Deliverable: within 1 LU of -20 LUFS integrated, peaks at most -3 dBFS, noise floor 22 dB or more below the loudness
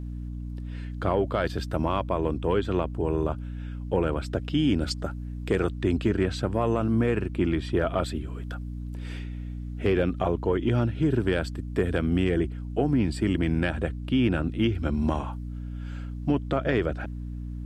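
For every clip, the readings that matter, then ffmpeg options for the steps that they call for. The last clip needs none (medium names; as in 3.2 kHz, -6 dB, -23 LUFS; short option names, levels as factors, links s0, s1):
hum 60 Hz; highest harmonic 300 Hz; hum level -32 dBFS; loudness -27.5 LUFS; peak level -12.0 dBFS; loudness target -20.0 LUFS
-> -af "bandreject=f=60:t=h:w=4,bandreject=f=120:t=h:w=4,bandreject=f=180:t=h:w=4,bandreject=f=240:t=h:w=4,bandreject=f=300:t=h:w=4"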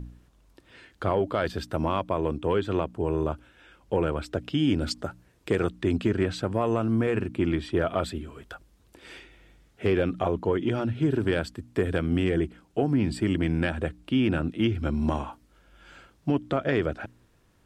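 hum not found; loudness -27.5 LUFS; peak level -12.5 dBFS; loudness target -20.0 LUFS
-> -af "volume=2.37"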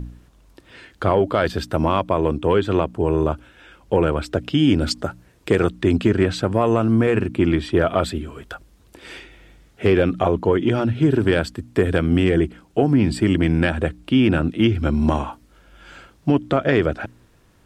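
loudness -20.0 LUFS; peak level -5.0 dBFS; noise floor -55 dBFS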